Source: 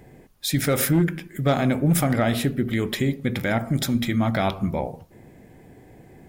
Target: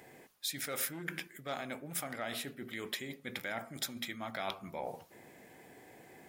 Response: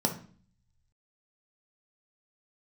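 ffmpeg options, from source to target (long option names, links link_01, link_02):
-af "areverse,acompressor=threshold=-31dB:ratio=10,areverse,highpass=frequency=1000:poles=1,volume=1.5dB"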